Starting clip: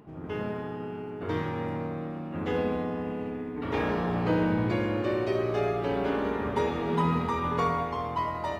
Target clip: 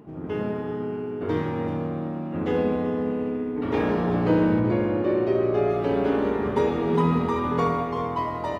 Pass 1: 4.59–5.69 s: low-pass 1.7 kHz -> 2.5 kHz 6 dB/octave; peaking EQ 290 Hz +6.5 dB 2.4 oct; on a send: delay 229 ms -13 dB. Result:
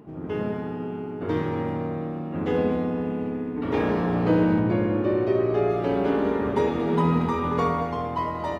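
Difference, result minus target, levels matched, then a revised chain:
echo 150 ms early
4.59–5.69 s: low-pass 1.7 kHz -> 2.5 kHz 6 dB/octave; peaking EQ 290 Hz +6.5 dB 2.4 oct; on a send: delay 379 ms -13 dB

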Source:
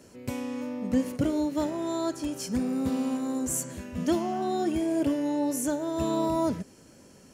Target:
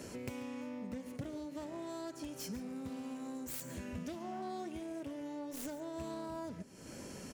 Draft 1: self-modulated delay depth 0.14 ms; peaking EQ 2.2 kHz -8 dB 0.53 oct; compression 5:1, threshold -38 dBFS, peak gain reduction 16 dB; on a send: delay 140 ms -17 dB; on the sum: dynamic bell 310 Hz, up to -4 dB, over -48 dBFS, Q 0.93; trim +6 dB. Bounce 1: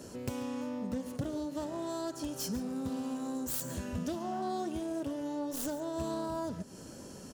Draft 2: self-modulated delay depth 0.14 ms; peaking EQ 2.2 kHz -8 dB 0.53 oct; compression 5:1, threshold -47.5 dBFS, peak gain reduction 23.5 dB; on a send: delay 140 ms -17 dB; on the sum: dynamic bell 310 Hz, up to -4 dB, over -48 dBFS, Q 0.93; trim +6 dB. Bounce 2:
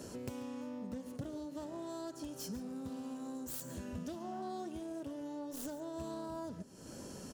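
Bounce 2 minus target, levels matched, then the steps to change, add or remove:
2 kHz band -4.5 dB
change: peaking EQ 2.2 kHz +2.5 dB 0.53 oct

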